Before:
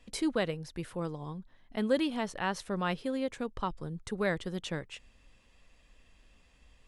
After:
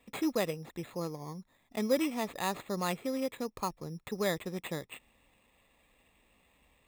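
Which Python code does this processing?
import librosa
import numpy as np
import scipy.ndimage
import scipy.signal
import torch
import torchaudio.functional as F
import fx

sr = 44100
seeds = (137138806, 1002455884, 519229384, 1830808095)

y = np.repeat(x[::8], 8)[:len(x)]
y = fx.notch_comb(y, sr, f0_hz=1500.0)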